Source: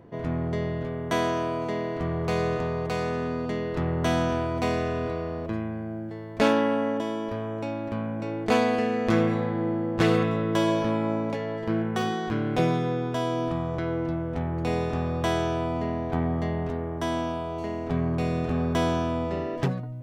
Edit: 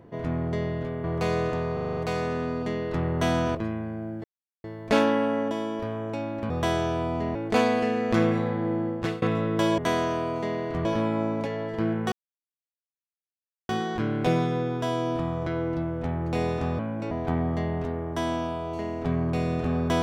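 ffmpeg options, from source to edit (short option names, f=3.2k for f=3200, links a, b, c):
-filter_complex "[0:a]asplit=18[a][b][c][d][e][f][g][h][i][j][k][l][m][n][o][p][q][r];[a]atrim=end=1.042[s];[b]atrim=start=2.108:end=2.842[t];[c]atrim=start=2.798:end=2.842[u];[d]atrim=start=2.798:end=2.842[v];[e]atrim=start=2.798:end=2.842[w];[f]atrim=start=2.798:end=2.842[x];[g]atrim=start=2.798:end=2.842[y];[h]atrim=start=2.798:end=4.382[z];[i]atrim=start=5.438:end=6.13,asetpts=PTS-STARTPTS,afade=t=out:st=0.688:d=0.004:c=hsin,apad=pad_dur=0.4[aa];[j]atrim=start=6.13:end=7.992,asetpts=PTS-STARTPTS,afade=t=in:d=0.004:c=hsin[ab];[k]atrim=start=15.108:end=15.962[ac];[l]atrim=start=8.308:end=10.18,asetpts=PTS-STARTPTS,afade=t=out:st=1.512:d=0.36:silence=0.0707946[ad];[m]atrim=start=10.18:end=10.742,asetpts=PTS-STARTPTS,afade=t=in:d=0.004:c=hsin:silence=0.0707946[ae];[n]atrim=start=1.038:end=2.112[af];[o]atrim=start=10.738:end=12.01,asetpts=PTS-STARTPTS,afade=t=out:st=1.268:d=0.004:c=hsin,apad=pad_dur=1.57[ag];[p]atrim=start=12.01:end=15.112,asetpts=PTS-STARTPTS,afade=t=in:d=0.004:c=hsin[ah];[q]atrim=start=7.988:end=8.312[ai];[r]atrim=start=15.958[aj];[s][t]acrossfade=d=0.004:c1=hsin:c2=hsin[ak];[ak][u]acrossfade=d=0.004:c1=hsin:c2=hsin[al];[al][v]acrossfade=d=0.004:c1=hsin:c2=hsin[am];[am][w]acrossfade=d=0.004:c1=hsin:c2=hsin[an];[an][x]acrossfade=d=0.004:c1=hsin:c2=hsin[ao];[ao][y]acrossfade=d=0.004:c1=hsin:c2=hsin[ap];[ap][z]acrossfade=d=0.004:c1=hsin:c2=hsin[aq];[aa][ab]concat=n=2:v=0:a=1[ar];[aq][ar]acrossfade=d=0.004:c1=hsin:c2=hsin[as];[as][ac]acrossfade=d=0.004:c1=hsin:c2=hsin[at];[ad][ae]concat=n=2:v=0:a=1[au];[at][au]acrossfade=d=0.004:c1=hsin:c2=hsin[av];[av][af]acrossfade=d=0.004:c1=hsin:c2=hsin[aw];[ag][ah]concat=n=2:v=0:a=1[ax];[aw][ax]acrossfade=d=0.004:c1=hsin:c2=hsin[ay];[ay][ai]acrossfade=d=0.004:c1=hsin:c2=hsin[az];[az][aj]acrossfade=d=0.004:c1=hsin:c2=hsin"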